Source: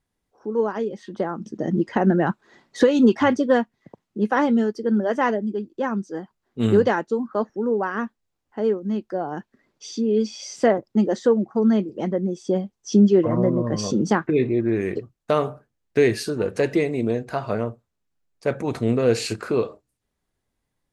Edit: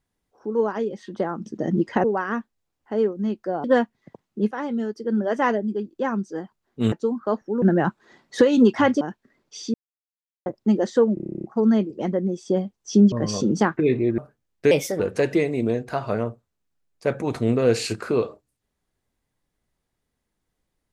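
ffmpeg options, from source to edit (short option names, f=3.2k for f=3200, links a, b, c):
-filter_complex "[0:a]asplit=23[a][b][c][d][e][f][g][h][i][j][k][l][m][n][o][p][q][r][s][t][u][v][w];[a]atrim=end=2.042[x];[b]atrim=start=7.698:end=9.302[y];[c]atrim=start=3.428:end=4.3,asetpts=PTS-STARTPTS,afade=t=out:st=0.868:d=0.004:c=hsin:silence=0.251189[z];[d]atrim=start=4.3:end=6.712,asetpts=PTS-STARTPTS,afade=t=in:d=0.94:silence=0.251189[aa];[e]atrim=start=6.998:end=7.702[ab];[f]atrim=start=2.038:end=3.432[ac];[g]atrim=start=9.298:end=10.03,asetpts=PTS-STARTPTS,afade=t=out:st=0.728:d=0.004:c=hsin[ad];[h]atrim=start=10.03:end=10.75,asetpts=PTS-STARTPTS,volume=0[ae];[i]atrim=start=10.75:end=11.462,asetpts=PTS-STARTPTS,afade=t=in:d=0.004:c=hsin[af];[j]atrim=start=11.428:end=11.462[ag];[k]atrim=start=11.428:end=11.462[ah];[l]atrim=start=11.428:end=11.462[ai];[m]atrim=start=11.428:end=11.462[aj];[n]atrim=start=11.428:end=11.462[ak];[o]atrim=start=11.428:end=11.462[al];[p]atrim=start=11.428:end=11.462[am];[q]atrim=start=11.428:end=11.462[an];[r]atrim=start=11.428:end=11.462[ao];[s]atrim=start=11.428:end=13.112[ap];[t]atrim=start=13.618:end=14.682[aq];[u]atrim=start=15.498:end=16.034[ar];[v]atrim=start=16.03:end=16.4,asetpts=PTS-STARTPTS,asetrate=56889,aresample=44100[as];[w]atrim=start=16.396[at];[x][y]acrossfade=d=0.004:c1=hsin:c2=hsin[au];[z][aa]concat=n=2:v=0:a=1[av];[au][av]acrossfade=d=0.004:c1=hsin:c2=hsin[aw];[aw][ab]acrossfade=d=0.004:c1=hsin:c2=hsin[ax];[ax][ac]acrossfade=d=0.004:c1=hsin:c2=hsin[ay];[ad][ae][af]concat=n=3:v=0:a=1[az];[ay][az]acrossfade=d=0.004:c1=hsin:c2=hsin[ba];[ba][ag]acrossfade=d=0.004:c1=hsin:c2=hsin[bb];[bb][ah]acrossfade=d=0.004:c1=hsin:c2=hsin[bc];[bc][ai]acrossfade=d=0.004:c1=hsin:c2=hsin[bd];[bd][aj]acrossfade=d=0.004:c1=hsin:c2=hsin[be];[be][ak]acrossfade=d=0.004:c1=hsin:c2=hsin[bf];[bf][al]acrossfade=d=0.004:c1=hsin:c2=hsin[bg];[bg][am]acrossfade=d=0.004:c1=hsin:c2=hsin[bh];[bh][an]acrossfade=d=0.004:c1=hsin:c2=hsin[bi];[bi][ao]acrossfade=d=0.004:c1=hsin:c2=hsin[bj];[bj][ap]acrossfade=d=0.004:c1=hsin:c2=hsin[bk];[bk][aq]acrossfade=d=0.004:c1=hsin:c2=hsin[bl];[bl][ar]acrossfade=d=0.004:c1=hsin:c2=hsin[bm];[bm][as]acrossfade=d=0.004:c1=hsin:c2=hsin[bn];[bn][at]acrossfade=d=0.004:c1=hsin:c2=hsin"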